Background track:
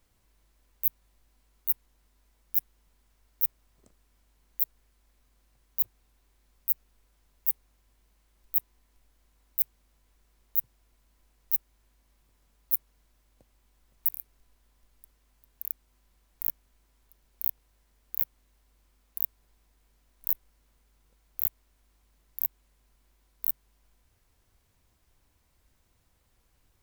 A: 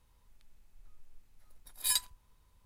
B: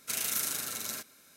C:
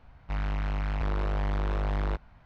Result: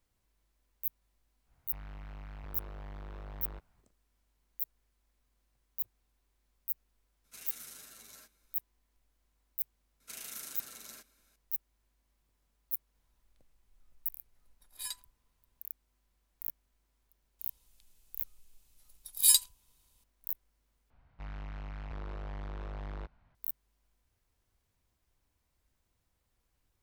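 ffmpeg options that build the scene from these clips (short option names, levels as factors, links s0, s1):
-filter_complex "[3:a]asplit=2[s0][s1];[2:a]asplit=2[s2][s3];[1:a]asplit=2[s4][s5];[0:a]volume=0.355[s6];[s2]asplit=2[s7][s8];[s8]adelay=10.4,afreqshift=2.7[s9];[s7][s9]amix=inputs=2:normalize=1[s10];[s3]highpass=120[s11];[s5]aexciter=amount=3.4:drive=6.7:freq=2600[s12];[s6]asplit=2[s13][s14];[s13]atrim=end=20.904[s15];[s1]atrim=end=2.45,asetpts=PTS-STARTPTS,volume=0.237[s16];[s14]atrim=start=23.346[s17];[s0]atrim=end=2.45,asetpts=PTS-STARTPTS,volume=0.15,afade=t=in:d=0.1,afade=t=out:st=2.35:d=0.1,adelay=1430[s18];[s10]atrim=end=1.36,asetpts=PTS-STARTPTS,volume=0.2,afade=t=in:d=0.004:c=hsin,afade=t=out:st=1.356:d=0.004:c=hsin,adelay=7240[s19];[s11]atrim=end=1.36,asetpts=PTS-STARTPTS,volume=0.237,afade=t=in:d=0.004:c=hsin,afade=t=out:st=1.356:d=0.004:c=hsin,adelay=10000[s20];[s4]atrim=end=2.65,asetpts=PTS-STARTPTS,volume=0.299,afade=t=in:d=0.004:c=hsin,afade=t=out:st=2.646:d=0.004:c=hsin,adelay=12950[s21];[s12]atrim=end=2.65,asetpts=PTS-STARTPTS,volume=0.447,afade=t=in:d=0.004:c=hsin,afade=t=out:st=2.646:d=0.004:c=hsin,adelay=17390[s22];[s15][s16]acrossfade=d=0.004:c1=hsin:c2=hsin[s23];[s23][s17]acrossfade=d=0.004:c1=hsin:c2=hsin[s24];[s24][s18][s19][s20][s21][s22]amix=inputs=6:normalize=0"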